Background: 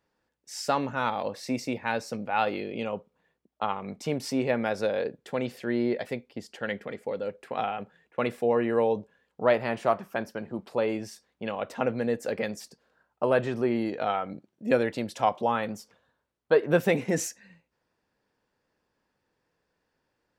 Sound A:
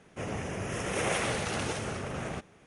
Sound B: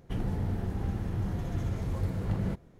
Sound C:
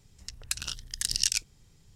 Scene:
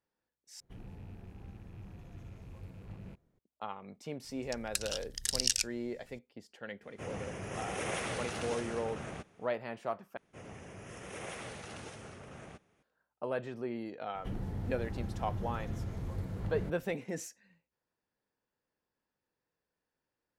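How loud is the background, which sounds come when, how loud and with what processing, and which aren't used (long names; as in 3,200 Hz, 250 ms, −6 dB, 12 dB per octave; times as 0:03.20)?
background −12 dB
0:00.60: overwrite with B −17 dB + loose part that buzzes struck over −33 dBFS, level −39 dBFS
0:04.24: mix in C −3.5 dB
0:06.82: mix in A −6.5 dB
0:10.17: overwrite with A −13.5 dB
0:14.15: mix in B −7 dB + multiband upward and downward compressor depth 40%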